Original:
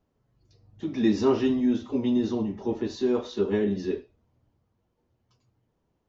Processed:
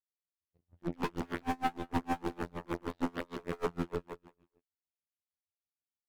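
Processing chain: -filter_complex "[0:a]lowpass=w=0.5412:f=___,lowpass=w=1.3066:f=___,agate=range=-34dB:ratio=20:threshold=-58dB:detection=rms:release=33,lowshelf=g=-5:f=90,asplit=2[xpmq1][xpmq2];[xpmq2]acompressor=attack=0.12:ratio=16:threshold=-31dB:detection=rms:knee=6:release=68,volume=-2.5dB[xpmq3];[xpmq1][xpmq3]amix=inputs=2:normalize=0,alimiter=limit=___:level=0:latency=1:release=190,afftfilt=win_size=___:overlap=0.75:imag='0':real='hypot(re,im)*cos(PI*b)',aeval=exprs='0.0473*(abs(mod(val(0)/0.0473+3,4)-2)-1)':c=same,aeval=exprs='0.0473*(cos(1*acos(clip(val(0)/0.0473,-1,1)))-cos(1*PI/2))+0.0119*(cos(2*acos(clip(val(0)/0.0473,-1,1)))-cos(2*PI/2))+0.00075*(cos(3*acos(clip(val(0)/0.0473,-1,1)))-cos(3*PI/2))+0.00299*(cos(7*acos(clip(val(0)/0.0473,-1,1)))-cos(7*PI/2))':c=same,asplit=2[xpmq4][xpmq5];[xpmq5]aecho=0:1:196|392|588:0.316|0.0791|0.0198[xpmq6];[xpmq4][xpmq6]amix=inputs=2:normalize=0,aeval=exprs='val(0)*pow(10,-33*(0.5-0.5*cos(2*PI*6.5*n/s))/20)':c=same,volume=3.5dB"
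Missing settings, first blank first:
2600, 2600, -15dB, 2048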